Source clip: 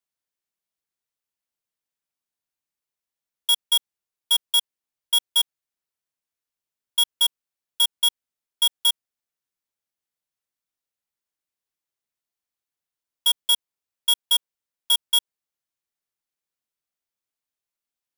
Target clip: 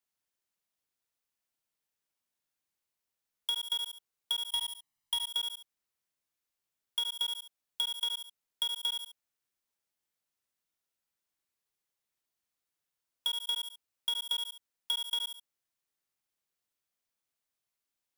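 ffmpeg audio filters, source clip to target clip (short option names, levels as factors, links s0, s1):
-filter_complex "[0:a]asplit=2[s0][s1];[s1]aecho=0:1:70|140|210:0.501|0.115|0.0265[s2];[s0][s2]amix=inputs=2:normalize=0,acrossover=split=4000[s3][s4];[s4]acompressor=threshold=0.02:ratio=4:attack=1:release=60[s5];[s3][s5]amix=inputs=2:normalize=0,asettb=1/sr,asplit=3[s6][s7][s8];[s6]atrim=end=4.504[s9];[s7]atrim=start=4.5:end=5.28,asetpts=PTS-STARTPTS,afade=t=in:d=0.004:c=qsin,afade=t=out:st=0.776:d=0.004:c=qsin,aecho=1:1:1:0.78,atrim=end_sample=34398[s10];[s8]atrim=start=5.276[s11];[s9][s10]acrossfade=d=0.004:c1=hsin:c2=qsin[s12];[s12][s11]acrossfade=d=0.004:c1=qsin:c2=hsin,acompressor=threshold=0.0282:ratio=6"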